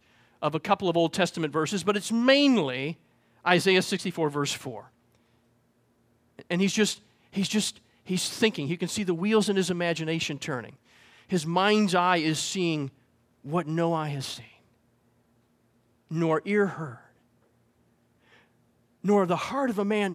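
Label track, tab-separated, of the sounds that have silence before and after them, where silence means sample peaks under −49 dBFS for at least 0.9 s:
6.390000	14.560000	sound
16.090000	17.070000	sound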